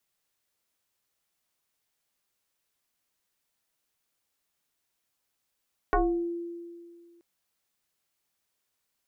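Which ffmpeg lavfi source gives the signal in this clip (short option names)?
-f lavfi -i "aevalsrc='0.112*pow(10,-3*t/2.07)*sin(2*PI*342*t+3.4*pow(10,-3*t/0.46)*sin(2*PI*1.1*342*t))':d=1.28:s=44100"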